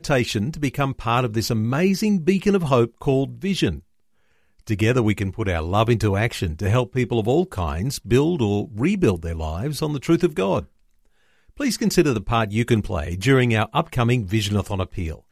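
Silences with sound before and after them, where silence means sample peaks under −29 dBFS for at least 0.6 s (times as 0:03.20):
0:03.77–0:04.69
0:10.61–0:11.60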